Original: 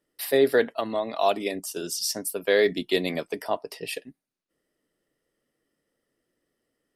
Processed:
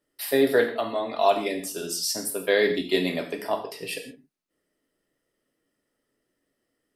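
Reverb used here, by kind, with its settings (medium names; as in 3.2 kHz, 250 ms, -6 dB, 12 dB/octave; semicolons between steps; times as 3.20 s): gated-style reverb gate 190 ms falling, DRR 2 dB; trim -1 dB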